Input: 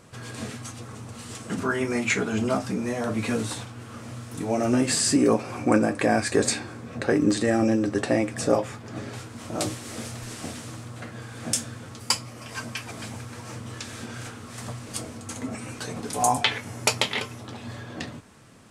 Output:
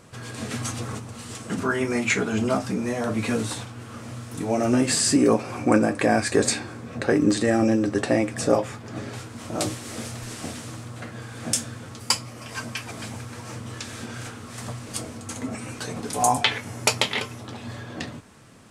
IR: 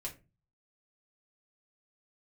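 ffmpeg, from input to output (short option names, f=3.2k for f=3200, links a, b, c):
-filter_complex "[0:a]asplit=3[a][b][c];[a]afade=t=out:st=0.5:d=0.02[d];[b]acontrast=65,afade=t=in:st=0.5:d=0.02,afade=t=out:st=0.98:d=0.02[e];[c]afade=t=in:st=0.98:d=0.02[f];[d][e][f]amix=inputs=3:normalize=0,volume=1.5dB"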